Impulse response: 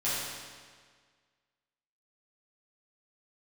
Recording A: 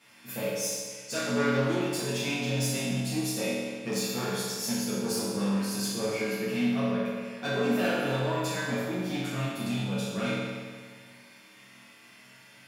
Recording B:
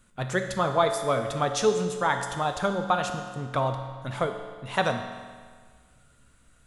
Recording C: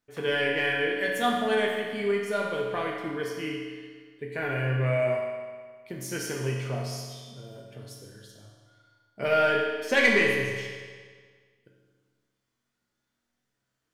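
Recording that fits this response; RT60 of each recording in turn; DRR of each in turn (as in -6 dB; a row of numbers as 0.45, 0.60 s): A; 1.7, 1.7, 1.7 s; -12.0, 5.0, -2.0 dB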